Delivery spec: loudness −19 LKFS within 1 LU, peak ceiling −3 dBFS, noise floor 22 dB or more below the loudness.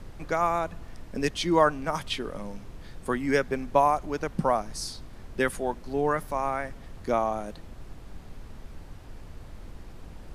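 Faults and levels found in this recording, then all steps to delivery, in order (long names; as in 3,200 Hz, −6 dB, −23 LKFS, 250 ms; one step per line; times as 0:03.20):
background noise floor −46 dBFS; target noise floor −50 dBFS; integrated loudness −28.0 LKFS; sample peak −7.5 dBFS; target loudness −19.0 LKFS
→ noise reduction from a noise print 6 dB
level +9 dB
brickwall limiter −3 dBFS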